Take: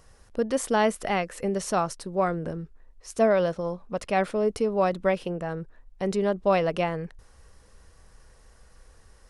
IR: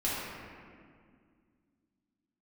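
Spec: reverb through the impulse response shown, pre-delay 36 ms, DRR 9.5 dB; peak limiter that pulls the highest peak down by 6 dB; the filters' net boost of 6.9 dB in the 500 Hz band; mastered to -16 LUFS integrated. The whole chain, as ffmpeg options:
-filter_complex "[0:a]equalizer=f=500:t=o:g=8.5,alimiter=limit=0.251:level=0:latency=1,asplit=2[s0][s1];[1:a]atrim=start_sample=2205,adelay=36[s2];[s1][s2]afir=irnorm=-1:irlink=0,volume=0.126[s3];[s0][s3]amix=inputs=2:normalize=0,volume=2.11"

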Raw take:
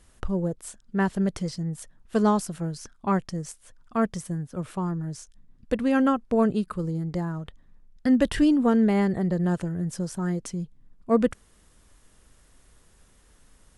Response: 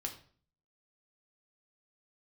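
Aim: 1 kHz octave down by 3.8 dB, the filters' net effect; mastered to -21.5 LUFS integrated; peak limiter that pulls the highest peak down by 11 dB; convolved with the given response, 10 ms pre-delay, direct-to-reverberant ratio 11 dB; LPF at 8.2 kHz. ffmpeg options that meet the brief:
-filter_complex "[0:a]lowpass=8200,equalizer=f=1000:t=o:g=-5,alimiter=limit=0.0891:level=0:latency=1,asplit=2[s0][s1];[1:a]atrim=start_sample=2205,adelay=10[s2];[s1][s2]afir=irnorm=-1:irlink=0,volume=0.299[s3];[s0][s3]amix=inputs=2:normalize=0,volume=2.82"

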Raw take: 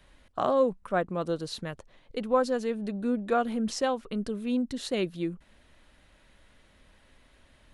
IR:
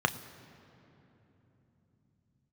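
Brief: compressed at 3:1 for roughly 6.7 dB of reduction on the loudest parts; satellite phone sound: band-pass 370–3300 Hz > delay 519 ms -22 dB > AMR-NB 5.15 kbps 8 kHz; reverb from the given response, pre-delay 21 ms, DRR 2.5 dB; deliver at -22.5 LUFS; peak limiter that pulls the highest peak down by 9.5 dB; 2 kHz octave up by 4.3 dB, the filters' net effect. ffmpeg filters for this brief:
-filter_complex "[0:a]equalizer=f=2000:t=o:g=6.5,acompressor=threshold=0.0447:ratio=3,alimiter=level_in=1.06:limit=0.0631:level=0:latency=1,volume=0.944,asplit=2[s0][s1];[1:a]atrim=start_sample=2205,adelay=21[s2];[s1][s2]afir=irnorm=-1:irlink=0,volume=0.224[s3];[s0][s3]amix=inputs=2:normalize=0,highpass=370,lowpass=3300,aecho=1:1:519:0.0794,volume=5.62" -ar 8000 -c:a libopencore_amrnb -b:a 5150

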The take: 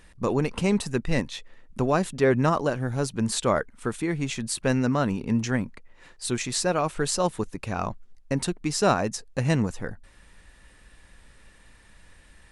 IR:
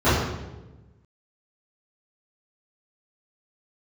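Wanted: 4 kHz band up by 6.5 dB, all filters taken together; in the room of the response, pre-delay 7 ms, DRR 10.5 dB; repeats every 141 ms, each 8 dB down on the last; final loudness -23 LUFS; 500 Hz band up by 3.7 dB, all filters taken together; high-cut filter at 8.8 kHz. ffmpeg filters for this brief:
-filter_complex "[0:a]lowpass=8800,equalizer=f=500:t=o:g=4.5,equalizer=f=4000:t=o:g=8,aecho=1:1:141|282|423|564|705:0.398|0.159|0.0637|0.0255|0.0102,asplit=2[s0][s1];[1:a]atrim=start_sample=2205,adelay=7[s2];[s1][s2]afir=irnorm=-1:irlink=0,volume=0.0237[s3];[s0][s3]amix=inputs=2:normalize=0,volume=0.944"

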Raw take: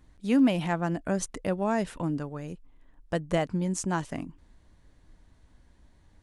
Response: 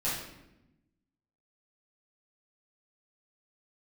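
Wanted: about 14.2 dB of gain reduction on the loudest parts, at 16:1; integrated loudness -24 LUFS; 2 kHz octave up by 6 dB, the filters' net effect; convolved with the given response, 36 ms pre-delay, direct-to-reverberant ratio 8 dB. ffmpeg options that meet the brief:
-filter_complex "[0:a]equalizer=f=2000:t=o:g=7.5,acompressor=threshold=0.0251:ratio=16,asplit=2[s0][s1];[1:a]atrim=start_sample=2205,adelay=36[s2];[s1][s2]afir=irnorm=-1:irlink=0,volume=0.178[s3];[s0][s3]amix=inputs=2:normalize=0,volume=4.73"

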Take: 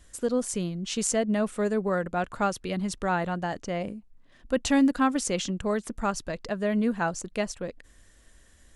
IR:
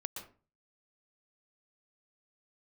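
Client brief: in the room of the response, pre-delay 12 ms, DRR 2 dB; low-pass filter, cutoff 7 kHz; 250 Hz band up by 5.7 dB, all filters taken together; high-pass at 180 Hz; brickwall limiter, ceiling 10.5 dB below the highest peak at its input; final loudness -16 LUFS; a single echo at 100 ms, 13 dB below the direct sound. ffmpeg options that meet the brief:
-filter_complex "[0:a]highpass=180,lowpass=7000,equalizer=f=250:t=o:g=8,alimiter=limit=0.126:level=0:latency=1,aecho=1:1:100:0.224,asplit=2[s0][s1];[1:a]atrim=start_sample=2205,adelay=12[s2];[s1][s2]afir=irnorm=-1:irlink=0,volume=0.891[s3];[s0][s3]amix=inputs=2:normalize=0,volume=3.55"

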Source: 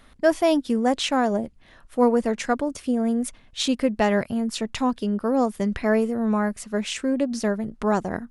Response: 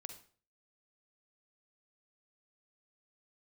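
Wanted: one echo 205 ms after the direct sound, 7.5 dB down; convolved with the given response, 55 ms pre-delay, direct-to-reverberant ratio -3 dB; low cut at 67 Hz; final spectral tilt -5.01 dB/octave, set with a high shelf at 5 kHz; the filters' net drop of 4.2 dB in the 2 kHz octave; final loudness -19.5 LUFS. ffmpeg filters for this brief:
-filter_complex "[0:a]highpass=67,equalizer=f=2000:t=o:g=-4.5,highshelf=f=5000:g=-6.5,aecho=1:1:205:0.422,asplit=2[s0][s1];[1:a]atrim=start_sample=2205,adelay=55[s2];[s1][s2]afir=irnorm=-1:irlink=0,volume=2.51[s3];[s0][s3]amix=inputs=2:normalize=0,volume=0.944"

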